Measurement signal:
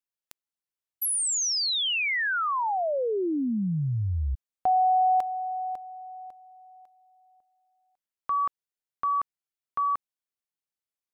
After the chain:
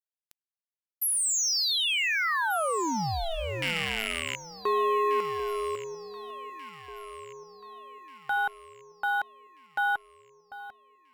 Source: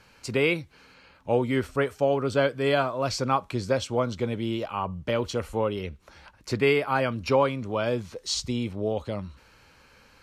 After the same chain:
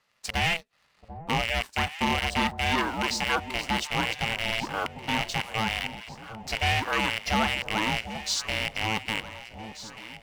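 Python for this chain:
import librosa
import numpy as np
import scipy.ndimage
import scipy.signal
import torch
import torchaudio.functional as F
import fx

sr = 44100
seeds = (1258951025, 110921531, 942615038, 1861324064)

p1 = fx.rattle_buzz(x, sr, strikes_db=-31.0, level_db=-15.0)
p2 = fx.highpass(p1, sr, hz=560.0, slope=6)
p3 = fx.leveller(p2, sr, passes=2)
p4 = np.where(np.abs(p3) >= 10.0 ** (-29.0 / 20.0), p3, 0.0)
p5 = p3 + (p4 * 10.0 ** (-6.0 / 20.0))
p6 = p5 * np.sin(2.0 * np.pi * 330.0 * np.arange(len(p5)) / sr)
p7 = p6 + fx.echo_alternate(p6, sr, ms=743, hz=860.0, feedback_pct=67, wet_db=-11.0, dry=0)
y = p7 * 10.0 ** (-6.5 / 20.0)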